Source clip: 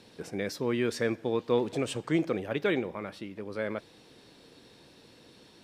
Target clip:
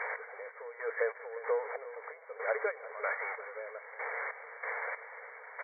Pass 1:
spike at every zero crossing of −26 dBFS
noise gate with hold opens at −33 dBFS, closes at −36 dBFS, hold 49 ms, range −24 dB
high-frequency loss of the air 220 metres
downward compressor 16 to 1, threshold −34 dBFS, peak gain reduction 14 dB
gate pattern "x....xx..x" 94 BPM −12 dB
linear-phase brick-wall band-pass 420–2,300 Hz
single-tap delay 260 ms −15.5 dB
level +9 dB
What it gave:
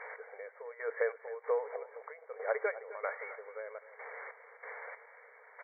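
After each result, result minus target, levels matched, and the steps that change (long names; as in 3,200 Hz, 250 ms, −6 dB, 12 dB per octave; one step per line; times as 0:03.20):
spike at every zero crossing: distortion −11 dB; echo 93 ms early
change: spike at every zero crossing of −14.5 dBFS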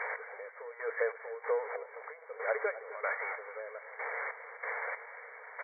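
echo 93 ms early
change: single-tap delay 353 ms −15.5 dB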